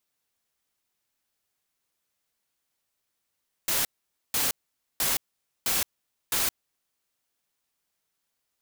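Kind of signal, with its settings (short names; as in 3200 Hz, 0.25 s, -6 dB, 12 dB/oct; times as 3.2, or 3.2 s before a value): noise bursts white, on 0.17 s, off 0.49 s, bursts 5, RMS -25.5 dBFS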